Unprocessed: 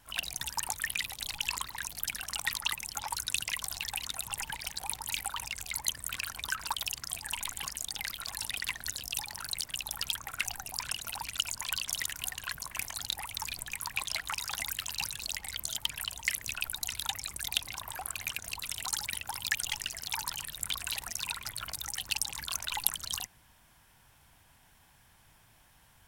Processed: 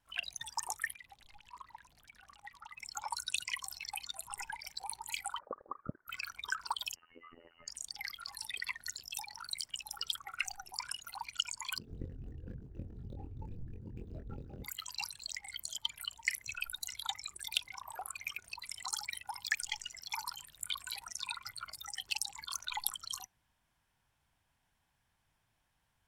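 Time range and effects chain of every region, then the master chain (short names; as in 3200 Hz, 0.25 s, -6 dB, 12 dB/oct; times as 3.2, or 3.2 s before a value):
0.93–2.77 high shelf 4100 Hz -12 dB + compressor 5:1, threshold -40 dBFS
5.39–6.08 Chebyshev high-pass 1700 Hz, order 4 + inverted band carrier 3300 Hz + Doppler distortion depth 0.41 ms
6.95–7.68 inverted band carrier 2900 Hz + compressor 2.5:1, threshold -44 dBFS + robotiser 84 Hz
11.78–14.64 median filter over 41 samples + tilt shelf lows +8 dB, about 710 Hz + doubler 23 ms -3.5 dB
whole clip: high shelf 11000 Hz -10.5 dB; spectral noise reduction 14 dB; gain -1.5 dB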